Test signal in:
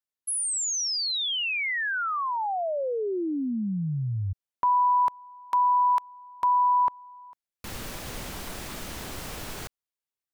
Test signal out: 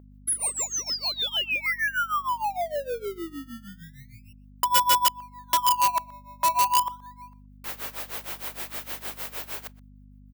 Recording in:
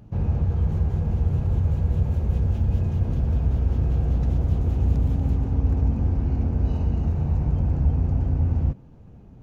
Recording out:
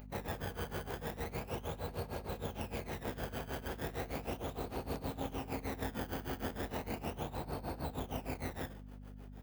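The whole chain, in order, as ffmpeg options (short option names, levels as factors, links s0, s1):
-filter_complex "[0:a]asplit=2[s0][s1];[s1]acrusher=samples=19:mix=1:aa=0.000001:lfo=1:lforange=19:lforate=0.36,volume=0.282[s2];[s0][s2]amix=inputs=2:normalize=0,tremolo=f=6.5:d=0.91,aemphasis=mode=production:type=riaa,aeval=exprs='val(0)+0.01*(sin(2*PI*50*n/s)+sin(2*PI*2*50*n/s)/2+sin(2*PI*3*50*n/s)/3+sin(2*PI*4*50*n/s)/4+sin(2*PI*5*50*n/s)/5)':c=same,bass=f=250:g=-13,treble=f=4000:g=-14,asplit=2[s3][s4];[s4]adelay=122.4,volume=0.0708,highshelf=f=4000:g=-2.76[s5];[s3][s5]amix=inputs=2:normalize=0,aeval=exprs='(mod(6.68*val(0)+1,2)-1)/6.68':c=same,volume=1.41"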